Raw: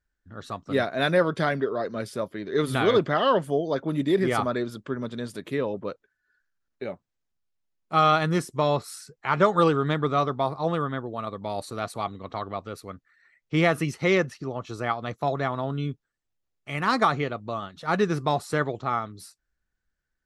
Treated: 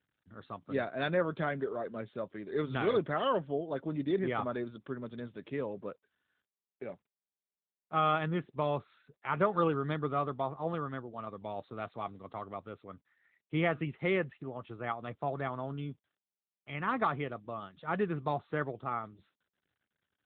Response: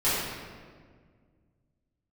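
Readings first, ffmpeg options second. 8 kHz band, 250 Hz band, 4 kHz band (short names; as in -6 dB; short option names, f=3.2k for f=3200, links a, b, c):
under -35 dB, -8.5 dB, -12.5 dB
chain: -af "aeval=exprs='0.447*(cos(1*acos(clip(val(0)/0.447,-1,1)))-cos(1*PI/2))+0.00562*(cos(3*acos(clip(val(0)/0.447,-1,1)))-cos(3*PI/2))':c=same,volume=-8dB" -ar 8000 -c:a libopencore_amrnb -b:a 12200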